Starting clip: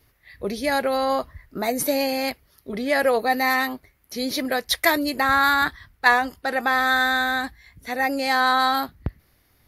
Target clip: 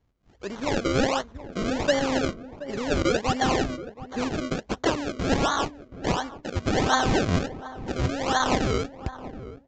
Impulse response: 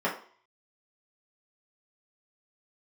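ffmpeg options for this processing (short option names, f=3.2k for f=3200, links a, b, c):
-filter_complex "[0:a]dynaudnorm=f=220:g=5:m=9dB,asplit=2[a][b];[b]aeval=exprs='sgn(val(0))*max(abs(val(0))-0.0335,0)':c=same,volume=-6dB[c];[a][c]amix=inputs=2:normalize=0,asettb=1/sr,asplit=3[d][e][f];[d]atrim=end=0.514[g];[e]atrim=start=0.51:end=1.06,asetpts=PTS-STARTPTS,afade=t=in:d=0.004:c=qsin,afade=t=out:st=0.546:d=0.004:c=qsin,acrusher=bits=2:mode=log:mix=0:aa=0.000001[h];[f]atrim=start=1.056[i];[g][h]acrossfade=d=0.004:c1=hsin:c2=qsin[j];[j][i]acrossfade=d=0.004:c1=qsin:c2=hsin,volume=3.5dB,asoftclip=hard,volume=-3.5dB,flanger=delay=0.3:depth=4.2:regen=51:speed=0.63:shape=sinusoidal,acrusher=samples=34:mix=1:aa=0.000001:lfo=1:lforange=34:lforate=1.4,asplit=2[k][l];[l]adelay=726,lowpass=f=850:p=1,volume=-13dB,asplit=2[m][n];[n]adelay=726,lowpass=f=850:p=1,volume=0.2[o];[m][o]amix=inputs=2:normalize=0[p];[k][p]amix=inputs=2:normalize=0,aresample=16000,aresample=44100,volume=-7.5dB"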